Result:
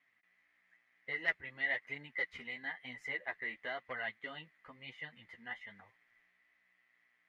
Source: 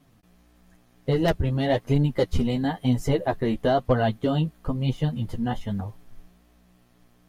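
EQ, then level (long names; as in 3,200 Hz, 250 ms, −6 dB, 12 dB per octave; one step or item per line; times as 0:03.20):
resonant band-pass 2,000 Hz, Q 11
+7.5 dB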